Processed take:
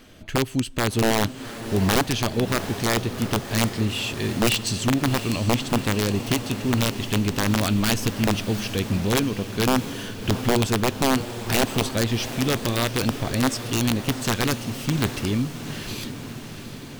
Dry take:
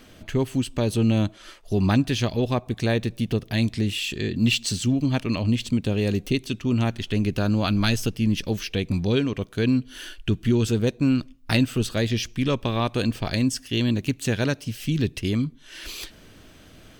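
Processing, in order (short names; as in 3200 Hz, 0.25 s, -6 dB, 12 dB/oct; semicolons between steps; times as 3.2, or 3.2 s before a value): 13.08–13.52 high shelf 3800 Hz -7.5 dB; wrapped overs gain 13.5 dB; diffused feedback echo 0.732 s, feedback 64%, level -11 dB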